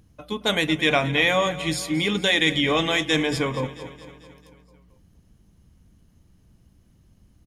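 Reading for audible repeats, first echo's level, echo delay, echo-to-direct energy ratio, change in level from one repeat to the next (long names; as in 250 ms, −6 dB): 5, −15.5 dB, 222 ms, −13.5 dB, −4.5 dB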